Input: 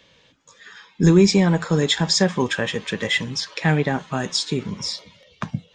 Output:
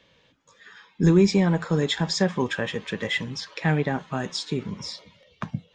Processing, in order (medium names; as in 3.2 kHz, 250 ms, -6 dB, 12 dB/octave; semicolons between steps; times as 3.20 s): treble shelf 4.8 kHz -8.5 dB; trim -3.5 dB